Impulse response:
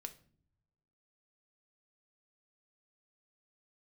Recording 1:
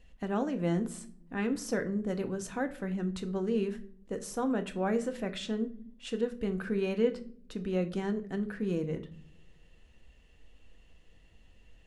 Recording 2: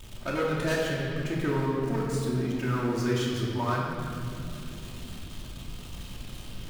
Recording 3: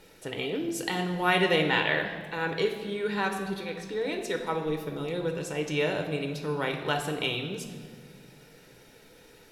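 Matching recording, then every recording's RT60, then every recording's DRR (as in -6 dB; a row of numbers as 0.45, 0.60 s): 1; not exponential, 2.8 s, 1.8 s; 6.5, -10.5, 3.5 dB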